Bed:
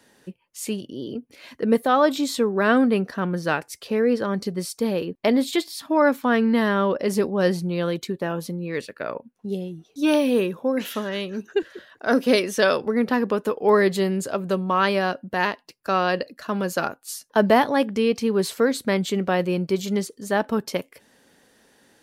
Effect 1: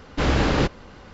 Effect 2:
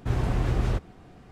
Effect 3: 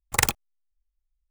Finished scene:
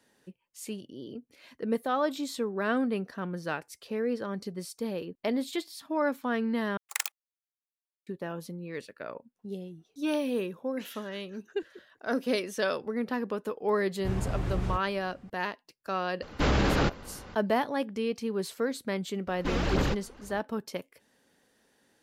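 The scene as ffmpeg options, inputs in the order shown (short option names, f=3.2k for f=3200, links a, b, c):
-filter_complex "[1:a]asplit=2[a][b];[0:a]volume=-10dB[c];[3:a]highpass=1.4k[d];[a]alimiter=limit=-15dB:level=0:latency=1:release=29[e];[b]aphaser=in_gain=1:out_gain=1:delay=4.5:decay=0.53:speed=1.9:type=sinusoidal[f];[c]asplit=2[g][h];[g]atrim=end=6.774[i];[d]atrim=end=1.3,asetpts=PTS-STARTPTS,volume=-9dB[j];[h]atrim=start=8.066[k];[2:a]atrim=end=1.31,asetpts=PTS-STARTPTS,volume=-6dB,afade=t=in:d=0.004:c=hsin,afade=t=out:st=1.306:d=0.004:c=hsin,adelay=13990[l];[e]atrim=end=1.13,asetpts=PTS-STARTPTS,volume=-1.5dB,afade=t=in:d=0.004:c=hsin,afade=t=out:st=1.126:d=0.004:c=hsin,adelay=16220[m];[f]atrim=end=1.13,asetpts=PTS-STARTPTS,volume=-10dB,afade=t=in:d=0.004:c=hsin,afade=t=out:st=1.126:d=0.004:c=hsin,adelay=19270[n];[i][j]acrossfade=d=0.004:c1=hsin:c2=hsin[o];[o][k]acrossfade=d=0.004:c1=hsin:c2=hsin[p];[p][l][m][n]amix=inputs=4:normalize=0"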